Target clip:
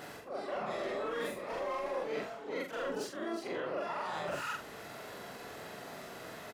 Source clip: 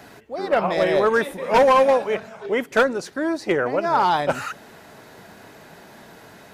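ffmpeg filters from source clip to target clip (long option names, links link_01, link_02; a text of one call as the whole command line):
ffmpeg -i in.wav -filter_complex "[0:a]afftfilt=real='re':imag='-im':win_size=4096:overlap=0.75,adynamicequalizer=threshold=0.0282:dfrequency=660:dqfactor=1.8:tfrequency=660:tqfactor=1.8:attack=5:release=100:ratio=0.375:range=2:mode=cutabove:tftype=bell,acrossover=split=270[link_01][link_02];[link_02]acompressor=mode=upward:threshold=-44dB:ratio=2.5[link_03];[link_01][link_03]amix=inputs=2:normalize=0,alimiter=limit=-18.5dB:level=0:latency=1:release=23,areverse,acompressor=threshold=-38dB:ratio=5,areverse,asplit=4[link_04][link_05][link_06][link_07];[link_05]asetrate=29433,aresample=44100,atempo=1.49831,volume=-9dB[link_08];[link_06]asetrate=52444,aresample=44100,atempo=0.840896,volume=-13dB[link_09];[link_07]asetrate=88200,aresample=44100,atempo=0.5,volume=-11dB[link_10];[link_04][link_08][link_09][link_10]amix=inputs=4:normalize=0,afreqshift=18,asplit=2[link_11][link_12];[link_12]adelay=45,volume=-6.5dB[link_13];[link_11][link_13]amix=inputs=2:normalize=0" out.wav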